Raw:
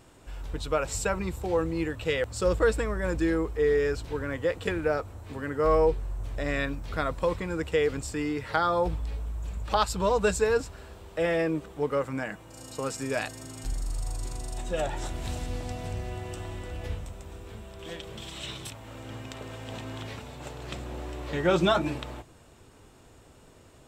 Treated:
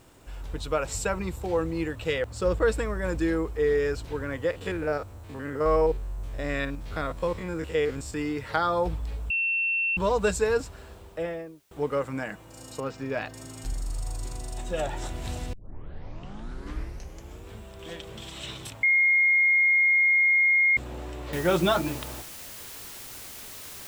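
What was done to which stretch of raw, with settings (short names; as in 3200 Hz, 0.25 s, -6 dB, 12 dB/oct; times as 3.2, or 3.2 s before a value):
2.18–2.68 high shelf 3900 Hz -6.5 dB
4.51–8.14 stepped spectrum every 50 ms
9.3–9.97 bleep 2700 Hz -23 dBFS
10.89–11.71 studio fade out
12.8–13.34 air absorption 210 m
15.53 tape start 1.96 s
18.83–20.77 bleep 2140 Hz -17.5 dBFS
21.33 noise floor step -68 dB -42 dB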